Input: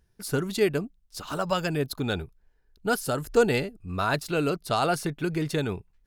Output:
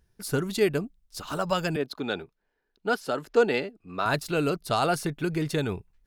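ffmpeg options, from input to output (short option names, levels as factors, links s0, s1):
-filter_complex "[0:a]asettb=1/sr,asplit=3[s0][s1][s2];[s0]atrim=end=1.764[s3];[s1]atrim=start=1.76:end=4.06,asetpts=PTS-STARTPTS,afade=t=in:d=0.004:c=qsin,afade=t=out:st=2.296:d=0.004:c=qsin,acrossover=split=200 5300:gain=0.1 1 0.178[s4][s5][s6];[s4][s5][s6]amix=inputs=3:normalize=0[s7];[s2]atrim=start=4.056[s8];[s3][s7]acrossfade=d=0.004:c1=hsin:c2=qsin[s9];[s9][s8]acrossfade=d=0.004:c1=qsin:c2=hsin"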